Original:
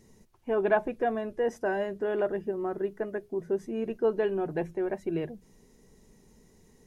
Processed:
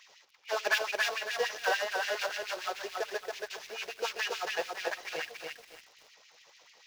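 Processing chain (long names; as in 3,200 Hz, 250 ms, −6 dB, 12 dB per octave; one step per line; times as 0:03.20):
variable-slope delta modulation 32 kbit/s
drawn EQ curve 140 Hz 0 dB, 220 Hz −23 dB, 950 Hz −2 dB, 2,300 Hz +7 dB
in parallel at −6 dB: sample-rate reduction 2,100 Hz, jitter 0%
on the sum: auto-filter high-pass sine 6.9 Hz 470–2,700 Hz
soft clipping −14.5 dBFS, distortion −26 dB
on a send at −23 dB: convolution reverb RT60 0.95 s, pre-delay 4 ms
on the sum: feedback echo at a low word length 278 ms, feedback 35%, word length 9 bits, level −3 dB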